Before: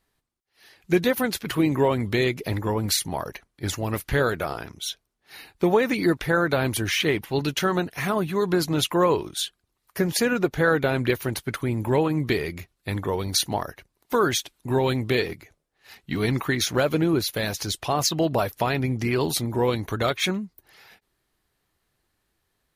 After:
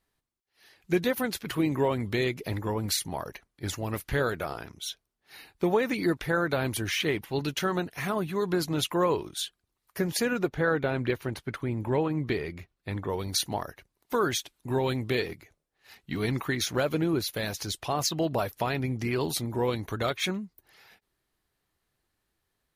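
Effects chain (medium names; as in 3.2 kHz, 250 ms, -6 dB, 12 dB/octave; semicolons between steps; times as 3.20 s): 10.49–13.10 s: low-pass 3.1 kHz 6 dB/octave; trim -5 dB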